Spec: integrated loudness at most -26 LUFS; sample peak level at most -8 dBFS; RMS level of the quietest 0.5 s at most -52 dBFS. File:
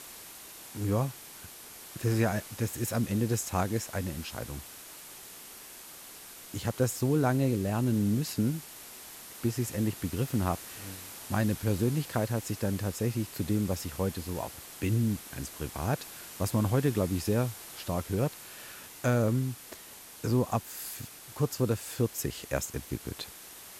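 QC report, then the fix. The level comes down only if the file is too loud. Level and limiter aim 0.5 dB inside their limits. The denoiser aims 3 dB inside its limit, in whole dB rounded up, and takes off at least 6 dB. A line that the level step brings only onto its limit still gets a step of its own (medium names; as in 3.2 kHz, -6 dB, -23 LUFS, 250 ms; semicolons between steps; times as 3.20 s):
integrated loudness -31.5 LUFS: pass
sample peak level -14.0 dBFS: pass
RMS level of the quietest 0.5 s -48 dBFS: fail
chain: noise reduction 7 dB, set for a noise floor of -48 dBFS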